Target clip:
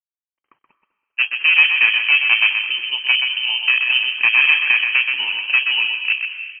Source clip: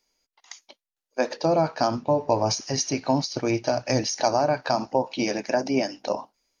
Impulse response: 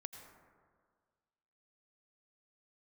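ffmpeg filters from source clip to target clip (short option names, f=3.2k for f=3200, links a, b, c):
-filter_complex "[0:a]afwtdn=0.0501,aecho=1:1:1.4:0.6,acontrast=80,crystalizer=i=5:c=0,aeval=exprs='0.944*(cos(1*acos(clip(val(0)/0.944,-1,1)))-cos(1*PI/2))+0.0211*(cos(7*acos(clip(val(0)/0.944,-1,1)))-cos(7*PI/2))':c=same,aresample=11025,aeval=exprs='sgn(val(0))*max(abs(val(0))-0.00188,0)':c=same,aresample=44100,flanger=delay=2:depth=4.7:regen=-77:speed=1.7:shape=triangular,aeval=exprs='clip(val(0),-1,0.178)':c=same,asplit=4[a][b][c][d];[b]adelay=198,afreqshift=-110,volume=-18dB[e];[c]adelay=396,afreqshift=-220,volume=-26.9dB[f];[d]adelay=594,afreqshift=-330,volume=-35.7dB[g];[a][e][f][g]amix=inputs=4:normalize=0,asplit=2[h][i];[1:a]atrim=start_sample=2205,lowpass=3k,adelay=127[j];[i][j]afir=irnorm=-1:irlink=0,volume=0dB[k];[h][k]amix=inputs=2:normalize=0,lowpass=f=2.7k:t=q:w=0.5098,lowpass=f=2.7k:t=q:w=0.6013,lowpass=f=2.7k:t=q:w=0.9,lowpass=f=2.7k:t=q:w=2.563,afreqshift=-3200,volume=3dB"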